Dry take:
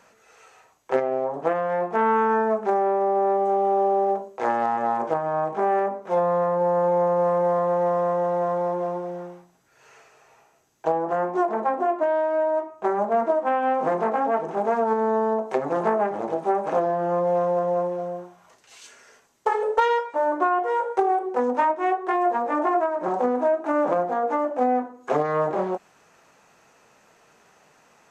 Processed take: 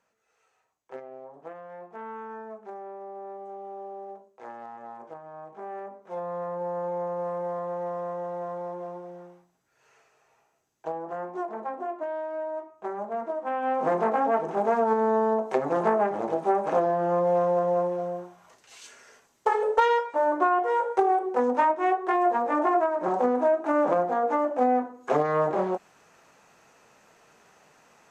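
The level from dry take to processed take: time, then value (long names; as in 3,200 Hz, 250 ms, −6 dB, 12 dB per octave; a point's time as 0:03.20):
0:05.37 −18.5 dB
0:06.52 −10 dB
0:13.31 −10 dB
0:13.92 −1 dB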